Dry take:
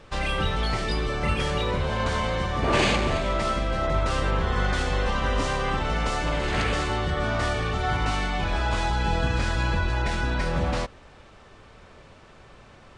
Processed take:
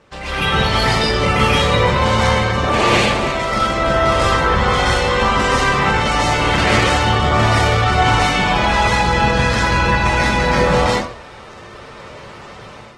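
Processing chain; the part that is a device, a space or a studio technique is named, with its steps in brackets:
far-field microphone of a smart speaker (convolution reverb RT60 0.45 s, pre-delay 118 ms, DRR −6 dB; high-pass filter 120 Hz 6 dB per octave; automatic gain control gain up to 9 dB; Opus 16 kbit/s 48,000 Hz)

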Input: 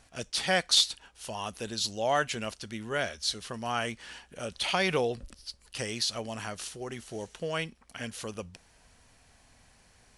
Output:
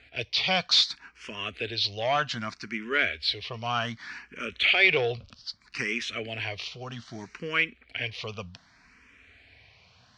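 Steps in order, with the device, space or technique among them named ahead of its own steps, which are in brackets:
barber-pole phaser into a guitar amplifier (frequency shifter mixed with the dry sound +0.64 Hz; soft clipping −21 dBFS, distortion −16 dB; loudspeaker in its box 82–4,600 Hz, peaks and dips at 150 Hz −5 dB, 210 Hz −5 dB, 340 Hz −4 dB, 550 Hz −8 dB, 840 Hz −9 dB, 2,300 Hz +8 dB)
level +8.5 dB

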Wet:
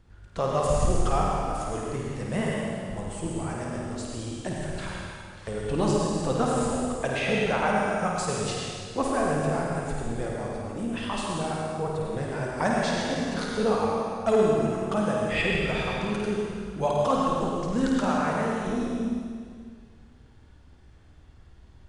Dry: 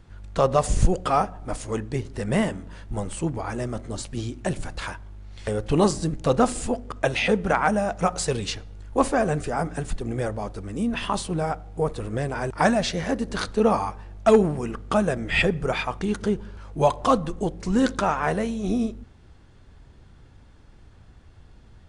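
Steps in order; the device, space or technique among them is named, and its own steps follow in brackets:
tunnel (flutter between parallel walls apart 9 metres, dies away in 0.52 s; convolution reverb RT60 2.1 s, pre-delay 77 ms, DRR −1.5 dB)
level −7.5 dB

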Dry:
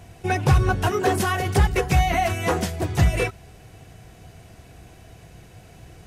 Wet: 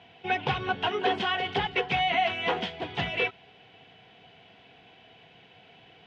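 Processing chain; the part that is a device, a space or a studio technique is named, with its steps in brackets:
phone earpiece (loudspeaker in its box 330–3,400 Hz, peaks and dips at 340 Hz −10 dB, 580 Hz −9 dB, 1,200 Hz −8 dB, 1,700 Hz −4 dB, 3,200 Hz +9 dB)

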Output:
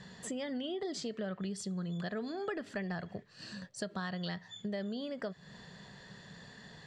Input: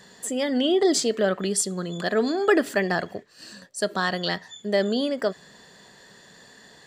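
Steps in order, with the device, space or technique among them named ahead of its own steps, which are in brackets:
jukebox (low-pass filter 5,100 Hz 12 dB per octave; low shelf with overshoot 220 Hz +8 dB, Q 1.5; downward compressor 5 to 1, threshold −34 dBFS, peak gain reduction 16.5 dB)
level −3 dB

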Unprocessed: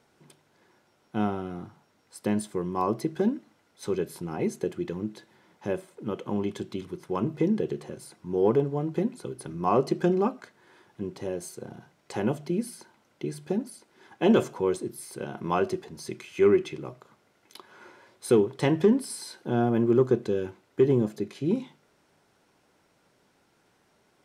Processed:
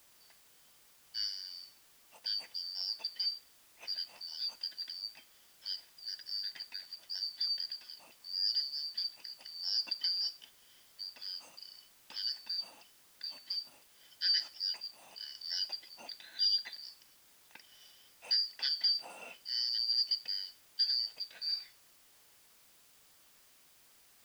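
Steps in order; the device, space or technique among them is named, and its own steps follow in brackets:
split-band scrambled radio (band-splitting scrambler in four parts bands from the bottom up 4321; band-pass filter 350–3,300 Hz; white noise bed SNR 24 dB)
level −3.5 dB

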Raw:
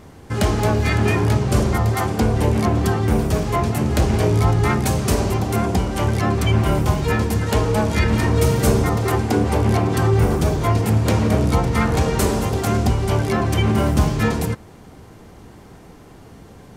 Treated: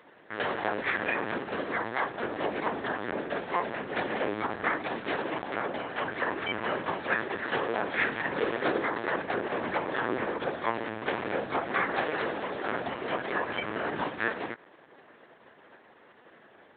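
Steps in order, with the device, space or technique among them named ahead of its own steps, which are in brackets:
talking toy (linear-prediction vocoder at 8 kHz; high-pass filter 390 Hz 12 dB per octave; parametric band 1,700 Hz +9 dB 0.46 octaves)
level −7.5 dB

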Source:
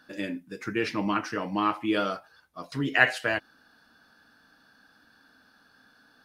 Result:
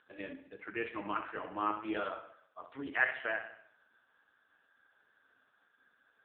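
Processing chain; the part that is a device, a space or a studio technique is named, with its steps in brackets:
0:01.51–0:02.98: mains-hum notches 50/100/150/200/250/300/350 Hz
tape delay 65 ms, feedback 55%, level −9 dB, low-pass 5,600 Hz
telephone (band-pass filter 380–3,600 Hz; soft clipping −9.5 dBFS, distortion −19 dB; level −5.5 dB; AMR narrowband 4.75 kbit/s 8,000 Hz)

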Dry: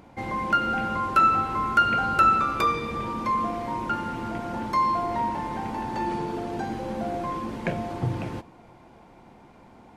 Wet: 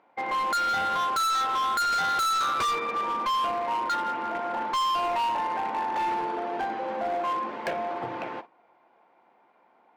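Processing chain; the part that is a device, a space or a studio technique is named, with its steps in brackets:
walkie-talkie (band-pass filter 570–2,400 Hz; hard clipping −29.5 dBFS, distortion −4 dB; noise gate −46 dBFS, range −12 dB)
level +5.5 dB

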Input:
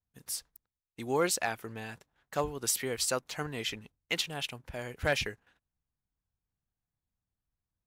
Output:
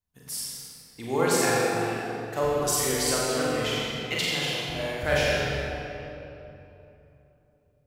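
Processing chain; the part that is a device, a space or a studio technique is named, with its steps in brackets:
tunnel (flutter between parallel walls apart 7.4 metres, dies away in 0.57 s; convolution reverb RT60 3.2 s, pre-delay 26 ms, DRR −5 dB)

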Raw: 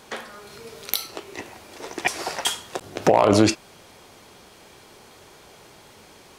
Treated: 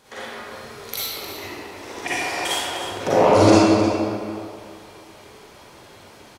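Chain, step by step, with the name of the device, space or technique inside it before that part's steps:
cave (single-tap delay 308 ms −13 dB; convolution reverb RT60 2.5 s, pre-delay 36 ms, DRR −11 dB)
level −8 dB

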